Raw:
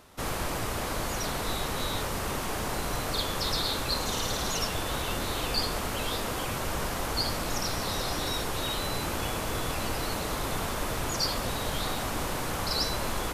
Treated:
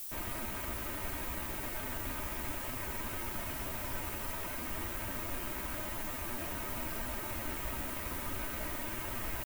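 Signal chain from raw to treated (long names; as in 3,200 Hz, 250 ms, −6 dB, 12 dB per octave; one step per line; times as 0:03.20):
pitch shifter +6 semitones
high-frequency loss of the air 470 metres
comb filter 4.5 ms, depth 50%
change of speed 1.41×
background noise violet −35 dBFS
level −8 dB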